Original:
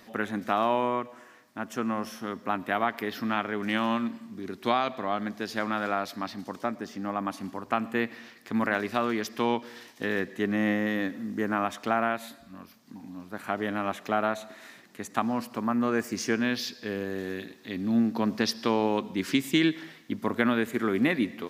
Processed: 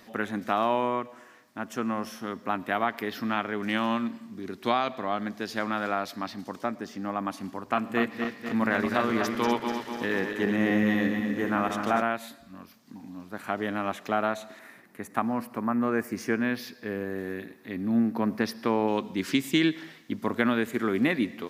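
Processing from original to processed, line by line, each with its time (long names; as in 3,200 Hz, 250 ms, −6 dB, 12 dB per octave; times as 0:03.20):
0:07.63–0:12.02: feedback delay that plays each chunk backwards 123 ms, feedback 75%, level −6 dB
0:14.59–0:18.88: flat-topped bell 4,700 Hz −9 dB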